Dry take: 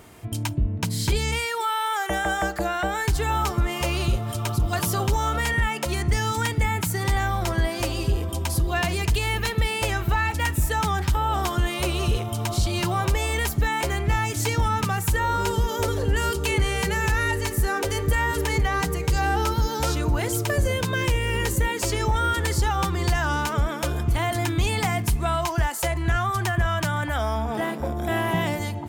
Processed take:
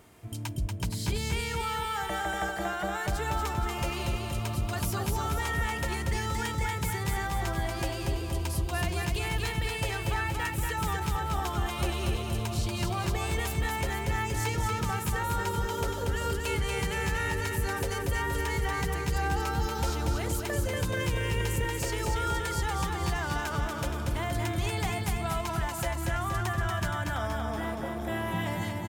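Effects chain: feedback echo 0.236 s, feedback 57%, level -4 dB; gain -8.5 dB

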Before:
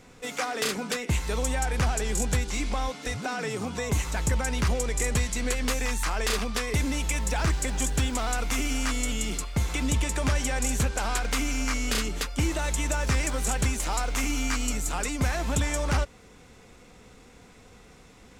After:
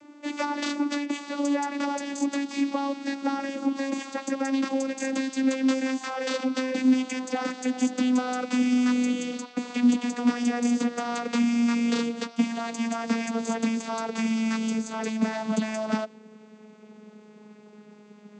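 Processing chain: vocoder on a gliding note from D4, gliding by -6 st; dynamic EQ 4400 Hz, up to +4 dB, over -57 dBFS, Q 1.1; gain +5 dB

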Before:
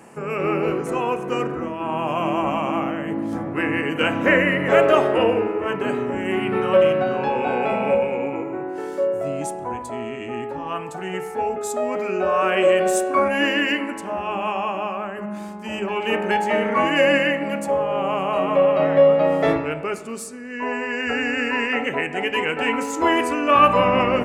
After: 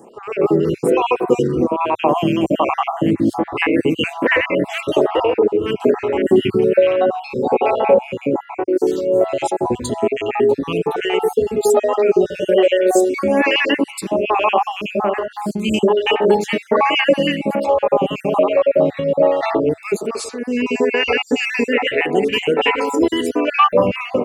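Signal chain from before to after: random spectral dropouts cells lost 42%; AGC gain up to 13 dB; fifteen-band EQ 100 Hz +3 dB, 400 Hz +5 dB, 1600 Hz -7 dB, 4000 Hz +8 dB; compressor 2:1, threshold -13 dBFS, peak gain reduction 5.5 dB; photocell phaser 1.2 Hz; gain +3 dB

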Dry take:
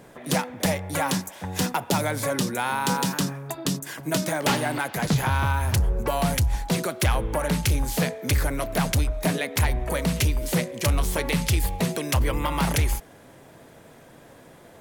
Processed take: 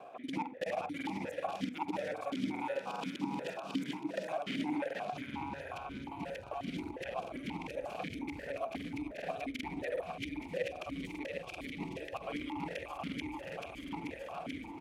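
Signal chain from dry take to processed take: local time reversal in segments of 47 ms; in parallel at -2.5 dB: level quantiser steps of 24 dB; on the sum: feedback echo 0.436 s, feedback 54%, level -5 dB; reverse; compressor 12:1, threshold -32 dBFS, peak gain reduction 19.5 dB; reverse; crackling interface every 0.39 s, samples 2048, repeat, from 0.96; vowel sequencer 5.6 Hz; gain +10.5 dB

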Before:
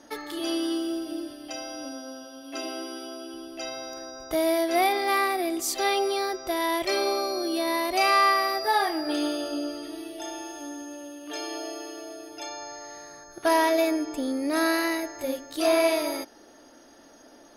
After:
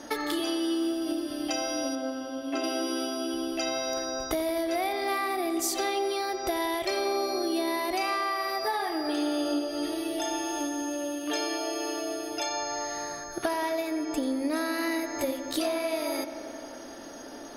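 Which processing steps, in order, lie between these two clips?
1.95–2.64 high shelf 3400 Hz -11.5 dB; compressor 12:1, threshold -35 dBFS, peak gain reduction 18 dB; darkening echo 88 ms, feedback 85%, low-pass 4300 Hz, level -13 dB; gain +8.5 dB

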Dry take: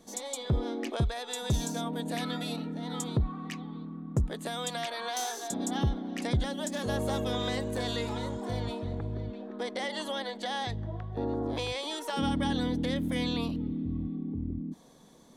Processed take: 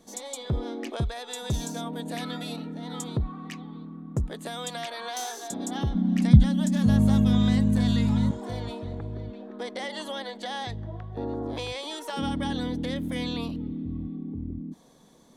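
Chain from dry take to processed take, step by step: 5.94–8.31 resonant low shelf 280 Hz +11.5 dB, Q 3

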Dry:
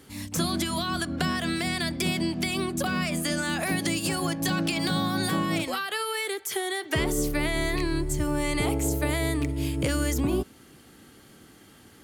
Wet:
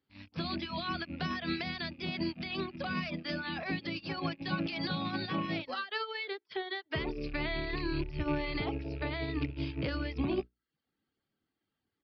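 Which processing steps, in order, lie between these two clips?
rattling part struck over -38 dBFS, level -29 dBFS; reverb removal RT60 0.72 s; notches 60/120/180/240/300/360/420/480/540/600 Hz; limiter -21.5 dBFS, peak gain reduction 6 dB; downsampling 11025 Hz; upward expander 2.5:1, over -48 dBFS

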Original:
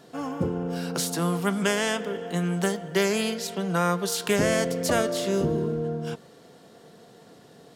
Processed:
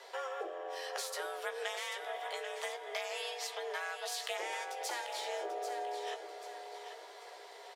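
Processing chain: bell 2400 Hz +9.5 dB 2.6 oct; compressor 6:1, threshold -33 dBFS, peak gain reduction 18 dB; frequency shift +260 Hz; doubler 15 ms -7 dB; feedback echo 0.789 s, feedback 38%, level -9 dB; gain -5.5 dB

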